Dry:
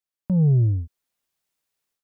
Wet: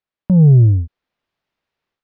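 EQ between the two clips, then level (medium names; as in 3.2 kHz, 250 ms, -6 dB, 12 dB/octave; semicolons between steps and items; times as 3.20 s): distance through air 270 m; +9.0 dB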